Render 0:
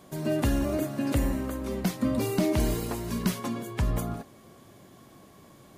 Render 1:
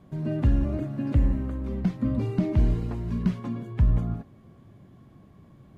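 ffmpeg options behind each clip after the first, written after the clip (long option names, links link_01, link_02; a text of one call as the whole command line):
ffmpeg -i in.wav -filter_complex "[0:a]acrossover=split=8400[link_01][link_02];[link_02]acompressor=threshold=-56dB:ratio=4:attack=1:release=60[link_03];[link_01][link_03]amix=inputs=2:normalize=0,bass=frequency=250:gain=14,treble=frequency=4000:gain=-13,volume=-7dB" out.wav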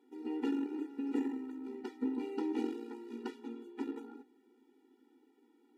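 ffmpeg -i in.wav -af "aeval=exprs='0.282*(cos(1*acos(clip(val(0)/0.282,-1,1)))-cos(1*PI/2))+0.0501*(cos(3*acos(clip(val(0)/0.282,-1,1)))-cos(3*PI/2))+0.0251*(cos(4*acos(clip(val(0)/0.282,-1,1)))-cos(4*PI/2))':channel_layout=same,afftfilt=real='re*eq(mod(floor(b*sr/1024/250),2),1)':imag='im*eq(mod(floor(b*sr/1024/250),2),1)':win_size=1024:overlap=0.75" out.wav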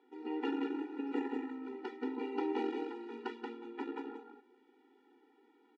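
ffmpeg -i in.wav -af "highpass=460,lowpass=3100,aecho=1:1:180:0.596,volume=5.5dB" out.wav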